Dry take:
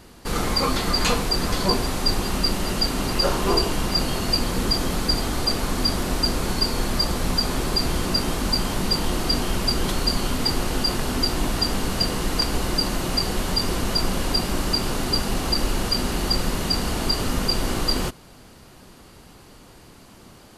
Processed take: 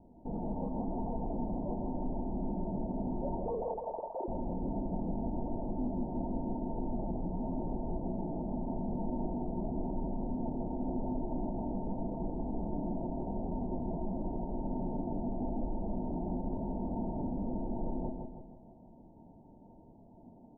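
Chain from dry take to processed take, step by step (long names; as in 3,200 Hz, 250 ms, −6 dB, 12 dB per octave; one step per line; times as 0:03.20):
0:03.46–0:04.28: three sine waves on the formant tracks
Chebyshev low-pass with heavy ripple 940 Hz, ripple 9 dB
brickwall limiter −25 dBFS, peak gain reduction 11 dB
flanger 0.9 Hz, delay 1 ms, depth 6 ms, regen +74%
repeating echo 161 ms, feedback 47%, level −5 dB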